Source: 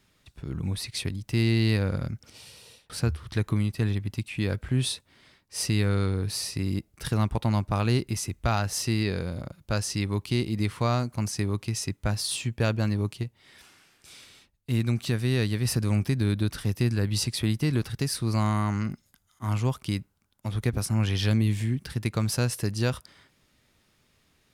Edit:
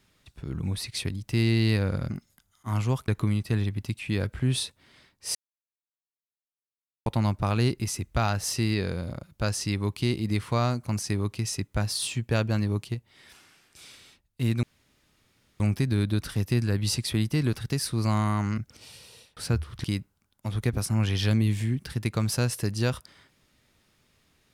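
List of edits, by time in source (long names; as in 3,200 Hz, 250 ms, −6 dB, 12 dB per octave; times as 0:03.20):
0:02.11–0:03.37: swap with 0:18.87–0:19.84
0:05.64–0:07.35: silence
0:14.92–0:15.89: fill with room tone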